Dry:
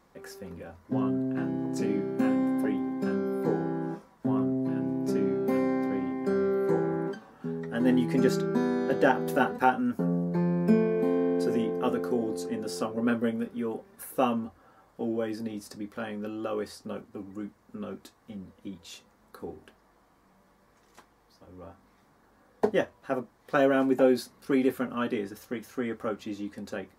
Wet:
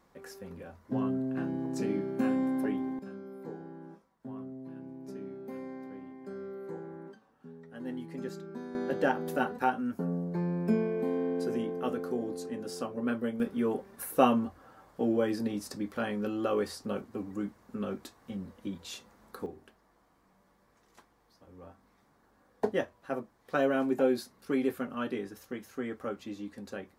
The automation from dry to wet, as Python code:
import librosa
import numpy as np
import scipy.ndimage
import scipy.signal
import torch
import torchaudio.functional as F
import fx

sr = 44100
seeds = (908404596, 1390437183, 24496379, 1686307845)

y = fx.gain(x, sr, db=fx.steps((0.0, -3.0), (2.99, -15.0), (8.75, -5.0), (13.4, 2.5), (19.46, -4.5)))